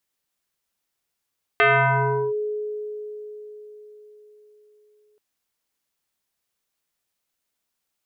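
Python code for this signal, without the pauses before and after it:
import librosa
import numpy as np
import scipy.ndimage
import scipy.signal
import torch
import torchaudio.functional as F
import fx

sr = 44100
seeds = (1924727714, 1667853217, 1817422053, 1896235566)

y = fx.fm2(sr, length_s=3.58, level_db=-12.5, carrier_hz=422.0, ratio=1.31, index=3.9, index_s=0.73, decay_s=4.6, shape='linear')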